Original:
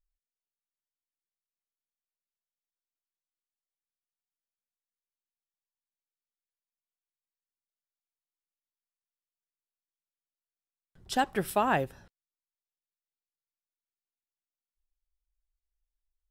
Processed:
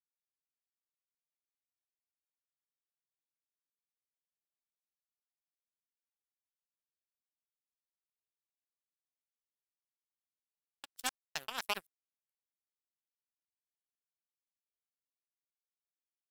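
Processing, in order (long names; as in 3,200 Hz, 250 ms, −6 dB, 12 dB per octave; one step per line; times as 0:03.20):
slices reordered back to front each 129 ms, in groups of 4
power curve on the samples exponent 3
first-order pre-emphasis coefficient 0.9
level +10.5 dB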